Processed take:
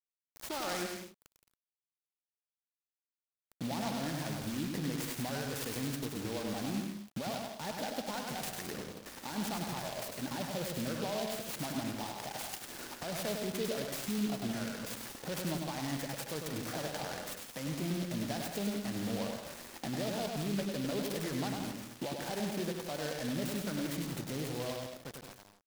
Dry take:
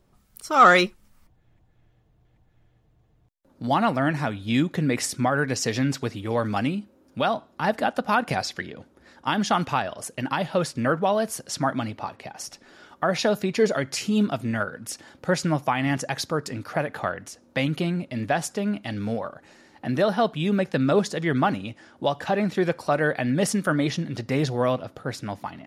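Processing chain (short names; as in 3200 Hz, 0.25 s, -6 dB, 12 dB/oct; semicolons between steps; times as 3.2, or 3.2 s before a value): ending faded out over 5.30 s; bell 4900 Hz +13 dB 0.34 oct; compressor 4:1, threshold -37 dBFS, peak gain reduction 21.5 dB; limiter -31 dBFS, peak gain reduction 11.5 dB; thirty-one-band EQ 100 Hz -8 dB, 1250 Hz -9 dB, 3150 Hz -11 dB, 6300 Hz -7 dB, 10000 Hz -5 dB; bit-crush 8-bit; bouncing-ball echo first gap 0.1 s, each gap 0.7×, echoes 5; noise-modulated delay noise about 3300 Hz, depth 0.085 ms; gain +2.5 dB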